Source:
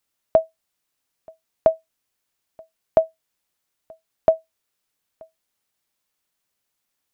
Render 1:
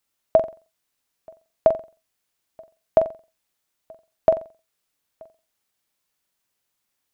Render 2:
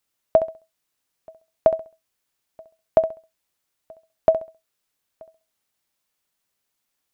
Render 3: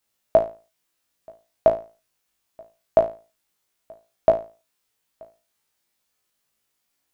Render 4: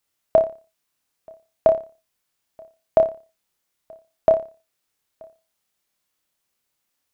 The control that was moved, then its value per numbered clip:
flutter between parallel walls, walls apart: 7.6, 11.4, 3.1, 5 metres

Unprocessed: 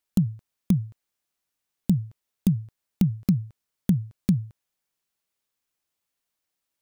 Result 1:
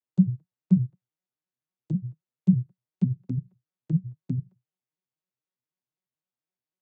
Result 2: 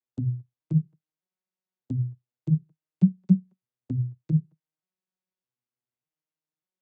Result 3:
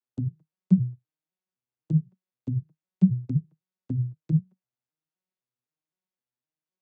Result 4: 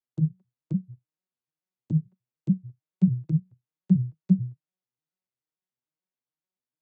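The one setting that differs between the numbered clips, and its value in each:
vocoder with an arpeggio as carrier, a note every: 84, 602, 257, 146 milliseconds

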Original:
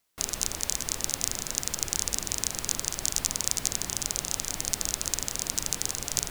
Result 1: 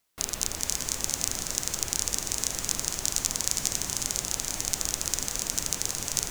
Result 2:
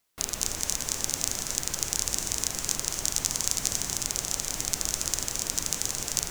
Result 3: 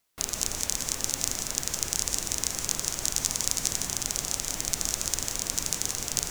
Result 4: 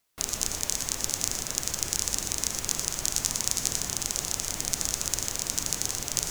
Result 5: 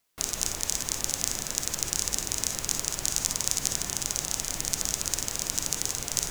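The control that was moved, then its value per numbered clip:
reverb whose tail is shaped and stops, gate: 540, 310, 210, 140, 80 milliseconds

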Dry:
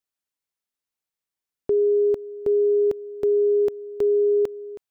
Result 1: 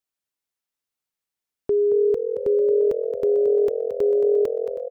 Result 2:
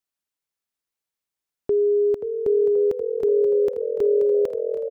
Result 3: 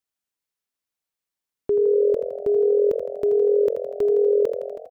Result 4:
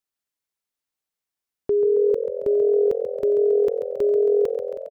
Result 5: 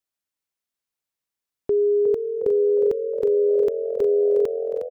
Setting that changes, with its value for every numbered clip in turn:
echo with shifted repeats, delay time: 223, 530, 81, 136, 360 milliseconds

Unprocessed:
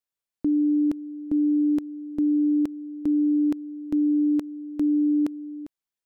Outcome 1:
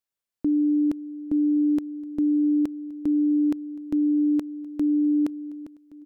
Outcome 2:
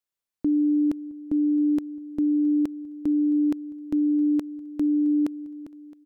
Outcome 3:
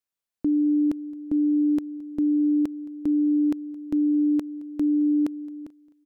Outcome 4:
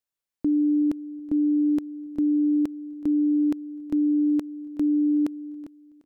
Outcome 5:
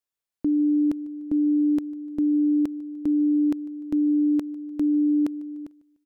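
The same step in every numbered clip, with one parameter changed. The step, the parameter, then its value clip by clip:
repeating echo, delay time: 1,121, 667, 219, 374, 149 milliseconds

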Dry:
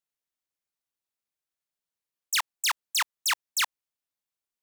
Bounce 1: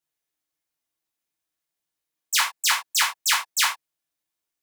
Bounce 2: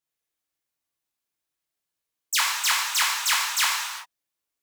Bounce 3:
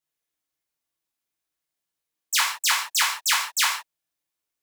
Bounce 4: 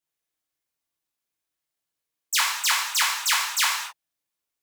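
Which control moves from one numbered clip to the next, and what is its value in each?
reverb whose tail is shaped and stops, gate: 120, 420, 190, 290 milliseconds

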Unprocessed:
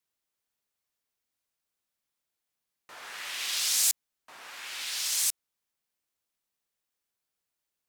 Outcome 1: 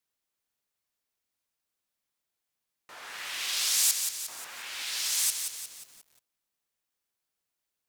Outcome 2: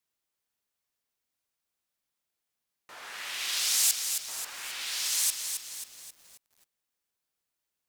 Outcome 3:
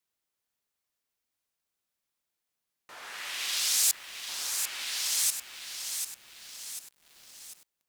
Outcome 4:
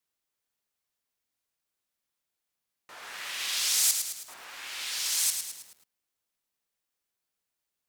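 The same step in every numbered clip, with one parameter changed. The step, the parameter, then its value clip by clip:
feedback echo at a low word length, delay time: 178, 268, 744, 107 milliseconds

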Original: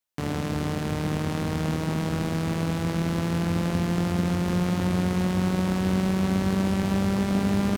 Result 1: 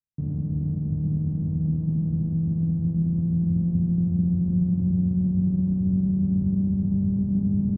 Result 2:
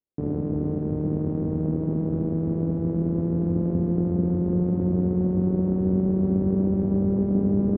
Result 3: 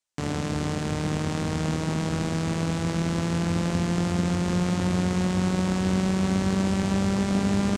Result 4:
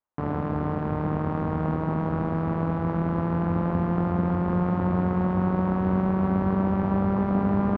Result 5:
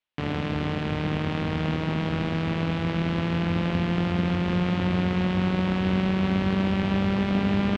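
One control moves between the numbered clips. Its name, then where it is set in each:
low-pass with resonance, frequency: 160, 400, 7,800, 1,100, 3,000 Hertz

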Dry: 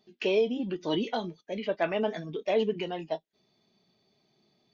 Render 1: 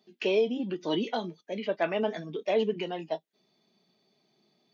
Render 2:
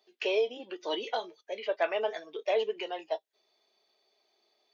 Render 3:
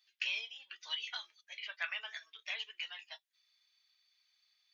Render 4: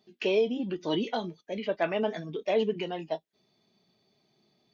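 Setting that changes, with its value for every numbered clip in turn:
high-pass filter, corner frequency: 150, 430, 1,500, 40 Hertz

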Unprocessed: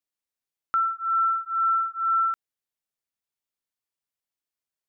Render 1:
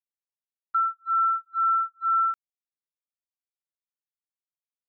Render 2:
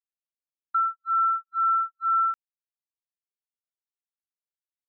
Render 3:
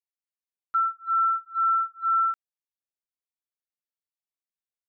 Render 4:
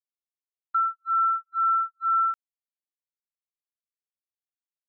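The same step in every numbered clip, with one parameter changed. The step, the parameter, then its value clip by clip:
noise gate, range: −25, −53, −13, −40 decibels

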